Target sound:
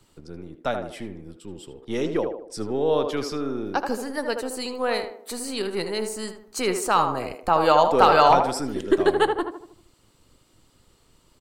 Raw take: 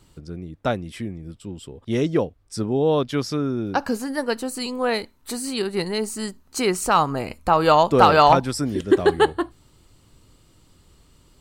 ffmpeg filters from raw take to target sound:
ffmpeg -i in.wav -filter_complex "[0:a]acrossover=split=290[link_01][link_02];[link_01]aeval=exprs='max(val(0),0)':channel_layout=same[link_03];[link_02]asplit=2[link_04][link_05];[link_05]adelay=78,lowpass=frequency=1300:poles=1,volume=-4dB,asplit=2[link_06][link_07];[link_07]adelay=78,lowpass=frequency=1300:poles=1,volume=0.49,asplit=2[link_08][link_09];[link_09]adelay=78,lowpass=frequency=1300:poles=1,volume=0.49,asplit=2[link_10][link_11];[link_11]adelay=78,lowpass=frequency=1300:poles=1,volume=0.49,asplit=2[link_12][link_13];[link_13]adelay=78,lowpass=frequency=1300:poles=1,volume=0.49,asplit=2[link_14][link_15];[link_15]adelay=78,lowpass=frequency=1300:poles=1,volume=0.49[link_16];[link_04][link_06][link_08][link_10][link_12][link_14][link_16]amix=inputs=7:normalize=0[link_17];[link_03][link_17]amix=inputs=2:normalize=0,volume=-2.5dB" out.wav

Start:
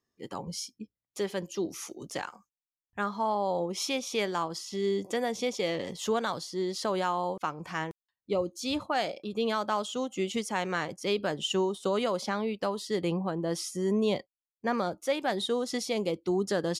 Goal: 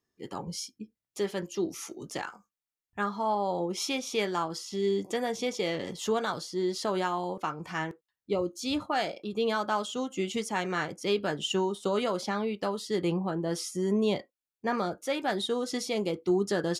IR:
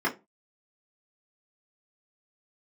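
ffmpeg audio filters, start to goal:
-filter_complex "[0:a]asplit=2[link_01][link_02];[link_02]equalizer=frequency=1500:width=2.3:gain=13[link_03];[1:a]atrim=start_sample=2205,afade=type=out:start_time=0.18:duration=0.01,atrim=end_sample=8379,asetrate=57330,aresample=44100[link_04];[link_03][link_04]afir=irnorm=-1:irlink=0,volume=-21.5dB[link_05];[link_01][link_05]amix=inputs=2:normalize=0"

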